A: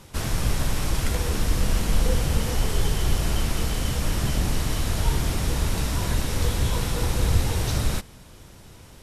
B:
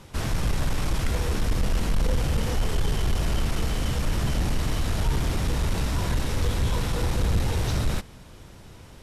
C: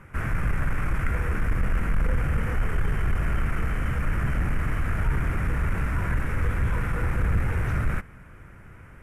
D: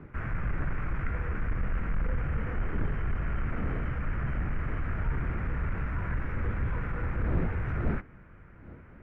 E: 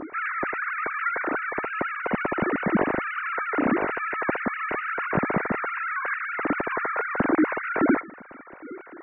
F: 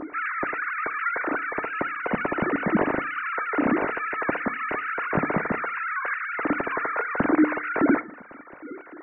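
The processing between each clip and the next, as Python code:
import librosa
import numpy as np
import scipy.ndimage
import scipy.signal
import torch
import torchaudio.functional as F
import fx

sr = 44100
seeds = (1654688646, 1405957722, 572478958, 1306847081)

y1 = fx.high_shelf(x, sr, hz=6000.0, db=-7.5)
y1 = 10.0 ** (-17.0 / 20.0) * np.tanh(y1 / 10.0 ** (-17.0 / 20.0))
y1 = y1 * librosa.db_to_amplitude(1.0)
y2 = fx.curve_eq(y1, sr, hz=(160.0, 230.0, 900.0, 1400.0, 2300.0, 3900.0, 9800.0), db=(0, -3, -5, 7, 2, -25, -10))
y3 = fx.dmg_wind(y2, sr, seeds[0], corner_hz=270.0, level_db=-36.0)
y3 = scipy.signal.sosfilt(scipy.signal.butter(2, 2500.0, 'lowpass', fs=sr, output='sos'), y3)
y3 = y3 * librosa.db_to_amplitude(-6.0)
y4 = fx.sine_speech(y3, sr)
y4 = fx.notch(y4, sr, hz=830.0, q=12.0)
y4 = y4 * librosa.db_to_amplitude(2.5)
y5 = fx.rev_fdn(y4, sr, rt60_s=0.44, lf_ratio=1.2, hf_ratio=0.4, size_ms=20.0, drr_db=16.5)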